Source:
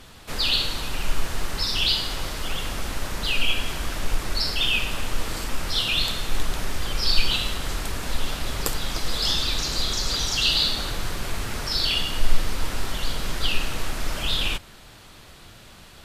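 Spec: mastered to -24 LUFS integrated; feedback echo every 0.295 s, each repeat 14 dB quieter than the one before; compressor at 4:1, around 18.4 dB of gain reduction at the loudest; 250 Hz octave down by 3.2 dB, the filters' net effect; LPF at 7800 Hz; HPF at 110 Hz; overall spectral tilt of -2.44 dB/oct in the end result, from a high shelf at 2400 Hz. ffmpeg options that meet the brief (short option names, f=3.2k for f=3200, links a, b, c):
-af "highpass=110,lowpass=7.8k,equalizer=f=250:t=o:g=-4,highshelf=f=2.4k:g=-3,acompressor=threshold=-44dB:ratio=4,aecho=1:1:295|590:0.2|0.0399,volume=18.5dB"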